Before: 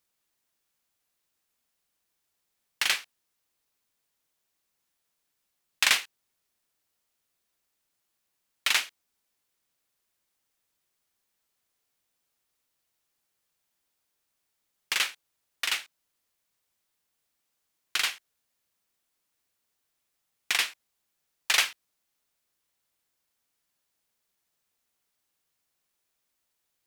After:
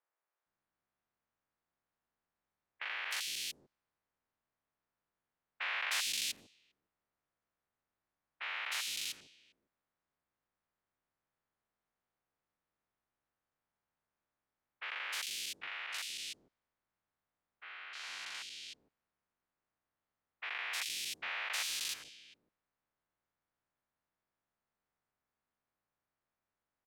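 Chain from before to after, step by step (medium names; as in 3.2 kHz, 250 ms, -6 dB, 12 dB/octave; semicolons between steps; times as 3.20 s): spectrogram pixelated in time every 400 ms; three bands offset in time mids, highs, lows 310/460 ms, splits 400/2800 Hz; level-controlled noise filter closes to 1.7 kHz, open at -37 dBFS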